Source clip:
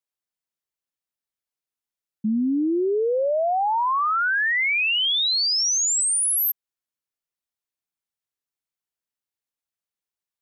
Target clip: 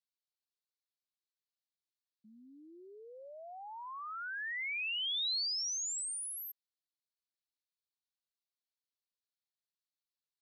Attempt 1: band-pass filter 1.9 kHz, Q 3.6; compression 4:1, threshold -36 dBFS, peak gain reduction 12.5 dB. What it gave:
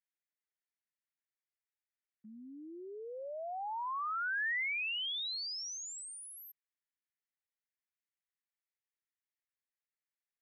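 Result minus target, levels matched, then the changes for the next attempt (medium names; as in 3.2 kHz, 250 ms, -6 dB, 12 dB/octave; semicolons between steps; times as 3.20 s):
2 kHz band +5.0 dB
change: band-pass filter 4.2 kHz, Q 3.6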